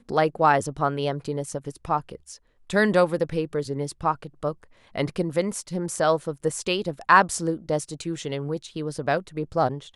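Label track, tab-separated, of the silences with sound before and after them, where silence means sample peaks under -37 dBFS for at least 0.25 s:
2.360000	2.700000	silence
4.640000	4.960000	silence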